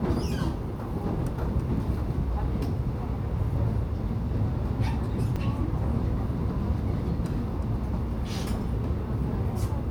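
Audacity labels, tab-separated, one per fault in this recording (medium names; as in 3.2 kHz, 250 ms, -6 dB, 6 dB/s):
5.360000	5.360000	dropout 3.7 ms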